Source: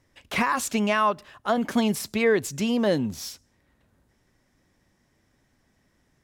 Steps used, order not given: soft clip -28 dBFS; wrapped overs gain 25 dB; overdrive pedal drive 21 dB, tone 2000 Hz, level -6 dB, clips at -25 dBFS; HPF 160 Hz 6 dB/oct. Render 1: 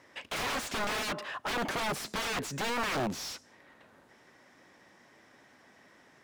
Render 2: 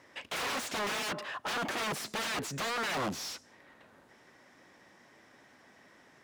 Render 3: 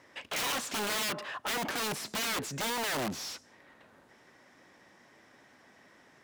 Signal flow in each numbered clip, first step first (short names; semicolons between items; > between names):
HPF > wrapped overs > soft clip > overdrive pedal; wrapped overs > overdrive pedal > HPF > soft clip; overdrive pedal > wrapped overs > HPF > soft clip